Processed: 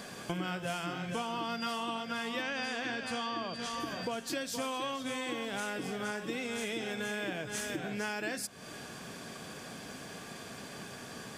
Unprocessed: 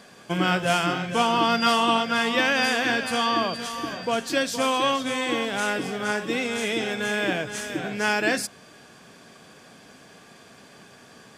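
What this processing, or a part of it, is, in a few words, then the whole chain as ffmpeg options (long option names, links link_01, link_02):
ASMR close-microphone chain: -filter_complex "[0:a]lowshelf=frequency=210:gain=3.5,acompressor=threshold=-38dB:ratio=6,highshelf=frequency=10000:gain=7,asettb=1/sr,asplit=3[link_01][link_02][link_03];[link_01]atrim=end=2.424[link_04];[link_02]atrim=start=2.42:end=3.8,asetpts=PTS-STARTPTS,afade=type=in:duration=0.004:curve=qsin,afade=type=out:start_time=1.376:duration=0.004:curve=qsin,lowpass=7300[link_05];[link_03]atrim=start=3.796[link_06];[link_04][link_05]acrossfade=duration=0.004:curve1=hsin:curve2=qsin[link_07];[link_07][link_06]acrossfade=duration=0.004:curve1=qsin:curve2=hsin,volume=3dB"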